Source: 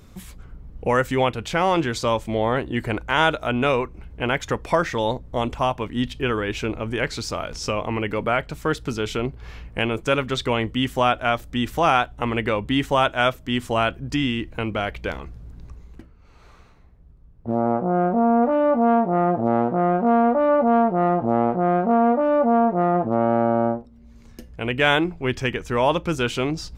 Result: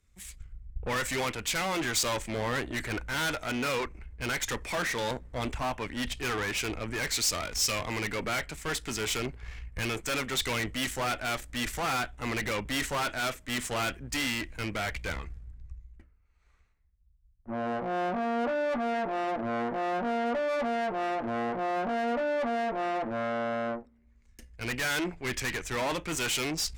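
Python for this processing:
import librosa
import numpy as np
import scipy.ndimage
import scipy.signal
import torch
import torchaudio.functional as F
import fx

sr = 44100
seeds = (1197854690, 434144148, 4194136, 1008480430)

y = fx.graphic_eq(x, sr, hz=(125, 2000, 8000), db=(-7, 11, 11))
y = fx.tube_stage(y, sr, drive_db=28.0, bias=0.6)
y = fx.band_widen(y, sr, depth_pct=100)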